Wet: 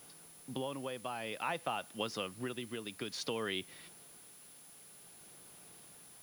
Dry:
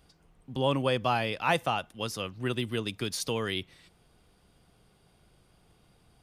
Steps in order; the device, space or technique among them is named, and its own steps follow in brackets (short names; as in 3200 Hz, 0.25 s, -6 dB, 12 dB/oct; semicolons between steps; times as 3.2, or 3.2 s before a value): medium wave at night (BPF 180–4500 Hz; compressor, threshold -36 dBFS, peak gain reduction 14.5 dB; tremolo 0.54 Hz, depth 50%; whine 10000 Hz -60 dBFS; white noise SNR 18 dB); gain +3.5 dB